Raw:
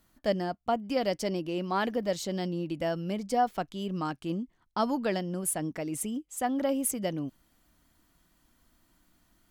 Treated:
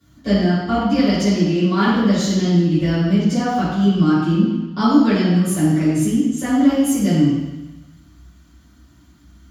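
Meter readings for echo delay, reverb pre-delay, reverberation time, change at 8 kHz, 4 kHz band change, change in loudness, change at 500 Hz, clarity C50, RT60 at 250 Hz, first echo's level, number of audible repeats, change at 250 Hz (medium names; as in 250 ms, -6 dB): no echo, 3 ms, 1.1 s, +6.0 dB, +12.5 dB, +14.5 dB, +7.5 dB, -1.5 dB, 1.0 s, no echo, no echo, +18.0 dB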